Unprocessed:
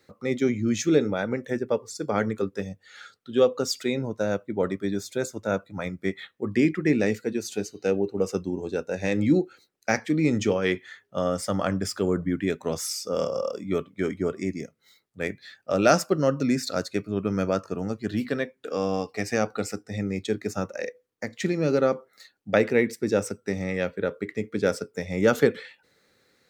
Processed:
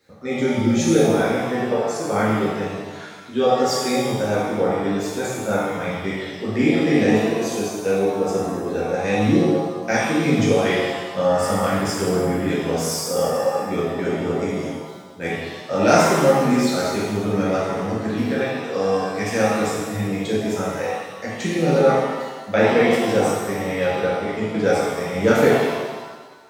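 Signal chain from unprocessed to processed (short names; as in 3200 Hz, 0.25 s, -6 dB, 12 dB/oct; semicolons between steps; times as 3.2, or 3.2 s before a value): shimmer reverb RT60 1.3 s, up +7 st, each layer -8 dB, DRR -7.5 dB; gain -2.5 dB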